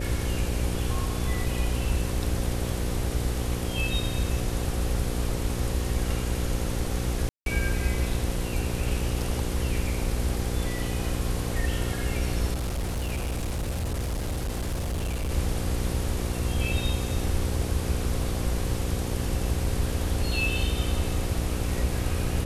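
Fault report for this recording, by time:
buzz 60 Hz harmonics 9 -31 dBFS
7.29–7.46 gap 0.172 s
12.53–15.31 clipped -25.5 dBFS

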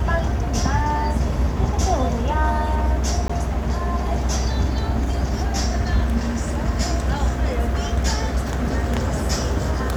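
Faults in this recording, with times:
3.28–3.29 gap 15 ms

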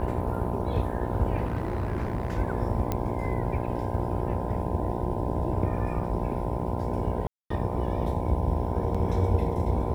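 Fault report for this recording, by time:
buzz 60 Hz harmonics 17 -32 dBFS
1.44–2.39 clipped -24 dBFS
2.92 pop -14 dBFS
7.27–7.5 gap 0.234 s
8.94–8.95 gap 5.9 ms

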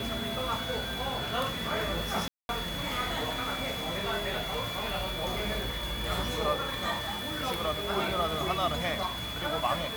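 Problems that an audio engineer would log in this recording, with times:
tone 3400 Hz -37 dBFS
2.28–2.49 gap 0.211 s

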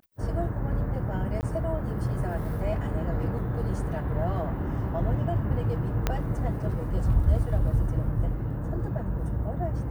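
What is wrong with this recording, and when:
1.41–1.43 gap 19 ms
6.07 pop -10 dBFS

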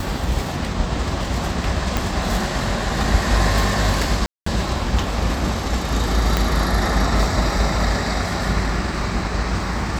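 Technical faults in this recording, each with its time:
1.97 pop
4.26–4.46 gap 0.204 s
6.37 pop -4 dBFS

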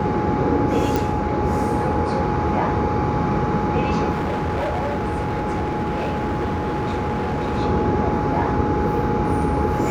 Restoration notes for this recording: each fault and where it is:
tone 840 Hz -25 dBFS
0.96 pop
4.11–7.59 clipped -20 dBFS

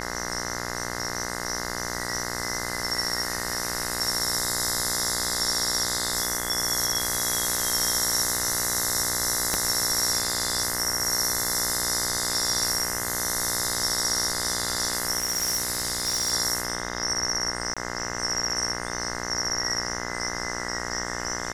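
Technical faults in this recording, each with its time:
buzz 60 Hz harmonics 35 -33 dBFS
9.54 pop -8 dBFS
15.18–16.33 clipped -21 dBFS
17.74–17.77 gap 26 ms

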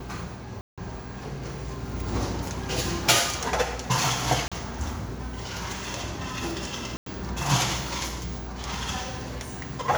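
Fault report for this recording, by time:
0.61–0.78 gap 0.166 s
4.48–4.52 gap 36 ms
6.97–7.06 gap 93 ms

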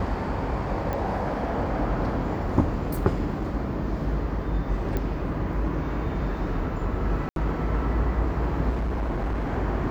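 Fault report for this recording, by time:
0.93 pop -17 dBFS
4.97 pop -15 dBFS
7.29–7.36 gap 72 ms
8.69–9.53 clipped -23.5 dBFS

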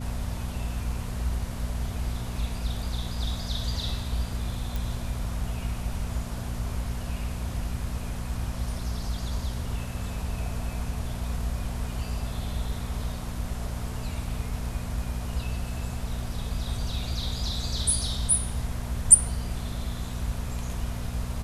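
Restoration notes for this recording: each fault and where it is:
hum 60 Hz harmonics 4 -34 dBFS
4.76 pop

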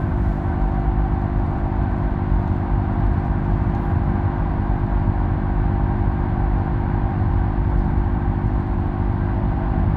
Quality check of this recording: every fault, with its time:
hum 50 Hz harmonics 7 -24 dBFS

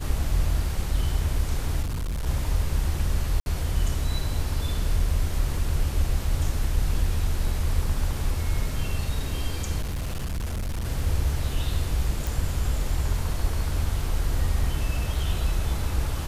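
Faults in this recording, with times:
1.82–2.27 clipped -25.5 dBFS
3.4–3.46 gap 61 ms
9.81–10.86 clipped -25.5 dBFS
12.27 pop

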